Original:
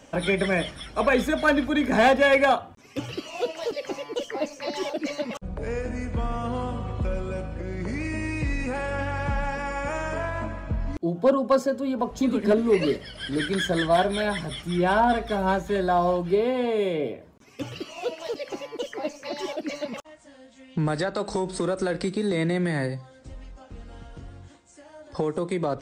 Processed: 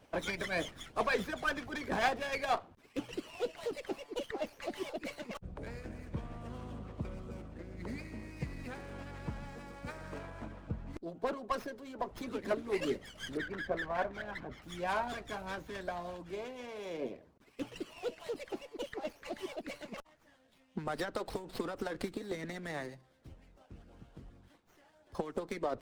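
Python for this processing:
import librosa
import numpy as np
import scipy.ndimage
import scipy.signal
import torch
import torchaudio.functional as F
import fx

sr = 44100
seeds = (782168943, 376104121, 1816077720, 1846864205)

y = fx.hpss(x, sr, part='harmonic', gain_db=-16)
y = fx.lowpass(y, sr, hz=2000.0, slope=24, at=(13.37, 14.62))
y = fx.running_max(y, sr, window=5)
y = F.gain(torch.from_numpy(y), -5.5).numpy()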